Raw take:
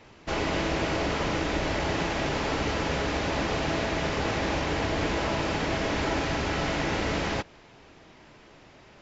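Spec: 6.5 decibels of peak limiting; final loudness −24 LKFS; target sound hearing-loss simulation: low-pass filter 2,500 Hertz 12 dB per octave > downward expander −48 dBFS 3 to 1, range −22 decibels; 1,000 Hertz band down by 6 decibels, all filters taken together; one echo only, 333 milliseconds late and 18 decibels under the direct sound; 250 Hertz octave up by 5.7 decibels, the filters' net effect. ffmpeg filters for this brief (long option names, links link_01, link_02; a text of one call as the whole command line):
ffmpeg -i in.wav -af "equalizer=frequency=250:width_type=o:gain=8,equalizer=frequency=1000:width_type=o:gain=-8.5,alimiter=limit=-19.5dB:level=0:latency=1,lowpass=2500,aecho=1:1:333:0.126,agate=range=-22dB:threshold=-48dB:ratio=3,volume=5.5dB" out.wav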